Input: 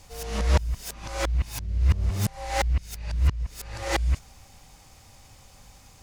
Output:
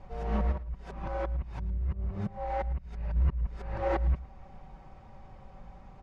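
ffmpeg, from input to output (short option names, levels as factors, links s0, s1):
-filter_complex "[0:a]lowpass=1200,aecho=1:1:5.3:0.48,asplit=3[s0][s1][s2];[s0]afade=t=out:st=0.51:d=0.02[s3];[s1]acompressor=threshold=0.02:ratio=4,afade=t=in:st=0.51:d=0.02,afade=t=out:st=3.15:d=0.02[s4];[s2]afade=t=in:st=3.15:d=0.02[s5];[s3][s4][s5]amix=inputs=3:normalize=0,alimiter=limit=0.075:level=0:latency=1:release=333,aecho=1:1:110:0.126,volume=1.41"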